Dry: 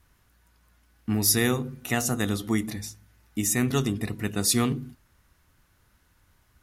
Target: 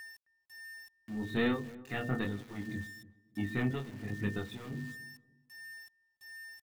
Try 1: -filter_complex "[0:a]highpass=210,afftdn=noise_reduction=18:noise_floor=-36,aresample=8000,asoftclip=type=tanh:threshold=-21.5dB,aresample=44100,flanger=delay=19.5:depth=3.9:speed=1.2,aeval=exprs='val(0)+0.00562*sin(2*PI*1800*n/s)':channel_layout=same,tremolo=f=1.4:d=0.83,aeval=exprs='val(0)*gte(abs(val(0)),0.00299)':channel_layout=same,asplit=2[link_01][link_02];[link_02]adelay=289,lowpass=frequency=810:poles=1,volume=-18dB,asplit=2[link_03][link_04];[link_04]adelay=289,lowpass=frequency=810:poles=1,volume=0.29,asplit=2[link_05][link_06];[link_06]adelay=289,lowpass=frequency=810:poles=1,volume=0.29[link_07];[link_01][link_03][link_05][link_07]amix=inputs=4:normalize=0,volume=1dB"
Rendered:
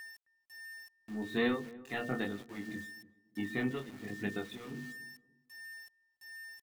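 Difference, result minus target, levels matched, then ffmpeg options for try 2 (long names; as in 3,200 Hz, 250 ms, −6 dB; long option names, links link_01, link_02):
125 Hz band −6.5 dB
-filter_complex "[0:a]highpass=77,afftdn=noise_reduction=18:noise_floor=-36,aresample=8000,asoftclip=type=tanh:threshold=-21.5dB,aresample=44100,flanger=delay=19.5:depth=3.9:speed=1.2,aeval=exprs='val(0)+0.00562*sin(2*PI*1800*n/s)':channel_layout=same,tremolo=f=1.4:d=0.83,aeval=exprs='val(0)*gte(abs(val(0)),0.00299)':channel_layout=same,asplit=2[link_01][link_02];[link_02]adelay=289,lowpass=frequency=810:poles=1,volume=-18dB,asplit=2[link_03][link_04];[link_04]adelay=289,lowpass=frequency=810:poles=1,volume=0.29,asplit=2[link_05][link_06];[link_06]adelay=289,lowpass=frequency=810:poles=1,volume=0.29[link_07];[link_01][link_03][link_05][link_07]amix=inputs=4:normalize=0,volume=1dB"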